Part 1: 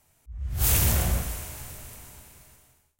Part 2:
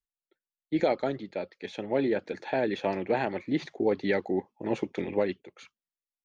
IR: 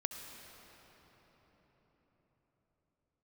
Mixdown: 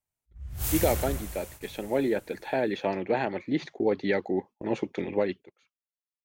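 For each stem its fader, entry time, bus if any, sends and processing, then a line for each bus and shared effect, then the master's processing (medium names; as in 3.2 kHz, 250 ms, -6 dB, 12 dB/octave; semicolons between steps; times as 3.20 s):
-7.5 dB, 0.00 s, no send, none
+0.5 dB, 0.00 s, no send, none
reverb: none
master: gate -44 dBFS, range -18 dB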